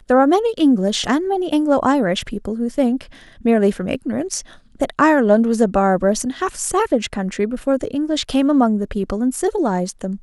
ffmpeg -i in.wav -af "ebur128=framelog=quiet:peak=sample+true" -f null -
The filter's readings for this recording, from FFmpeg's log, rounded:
Integrated loudness:
  I:         -18.3 LUFS
  Threshold: -28.4 LUFS
Loudness range:
  LRA:         2.2 LU
  Threshold: -38.6 LUFS
  LRA low:   -19.8 LUFS
  LRA high:  -17.6 LUFS
Sample peak:
  Peak:       -2.3 dBFS
True peak:
  Peak:       -2.3 dBFS